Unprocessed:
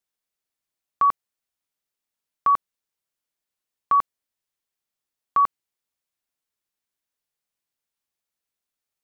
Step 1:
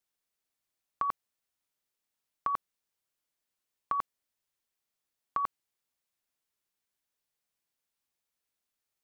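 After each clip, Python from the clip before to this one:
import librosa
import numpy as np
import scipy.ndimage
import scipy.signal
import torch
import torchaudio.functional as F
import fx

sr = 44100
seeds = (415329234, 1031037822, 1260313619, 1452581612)

y = fx.over_compress(x, sr, threshold_db=-21.0, ratio=-0.5)
y = F.gain(torch.from_numpy(y), -6.5).numpy()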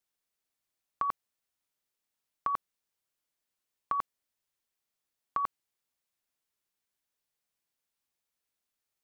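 y = x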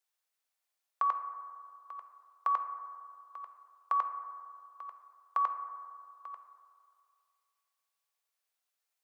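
y = scipy.signal.sosfilt(scipy.signal.butter(4, 530.0, 'highpass', fs=sr, output='sos'), x)
y = y + 10.0 ** (-15.5 / 20.0) * np.pad(y, (int(891 * sr / 1000.0), 0))[:len(y)]
y = fx.rev_fdn(y, sr, rt60_s=2.2, lf_ratio=0.75, hf_ratio=0.25, size_ms=39.0, drr_db=6.5)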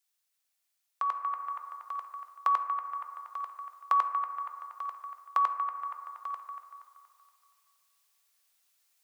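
y = fx.high_shelf(x, sr, hz=2000.0, db=10.5)
y = fx.echo_wet_bandpass(y, sr, ms=236, feedback_pct=47, hz=1400.0, wet_db=-7)
y = fx.rider(y, sr, range_db=4, speed_s=0.5)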